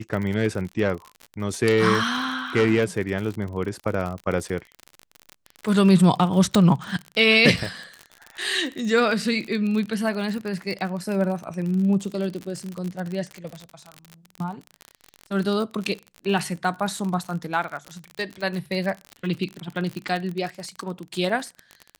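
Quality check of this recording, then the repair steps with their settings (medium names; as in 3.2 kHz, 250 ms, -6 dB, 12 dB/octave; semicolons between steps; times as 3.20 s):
crackle 45 per s -28 dBFS
6.55 s: pop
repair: de-click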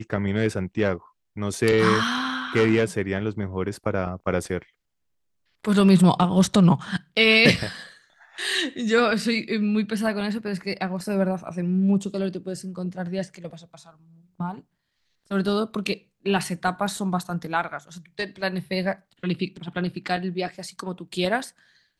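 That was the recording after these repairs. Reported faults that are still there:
nothing left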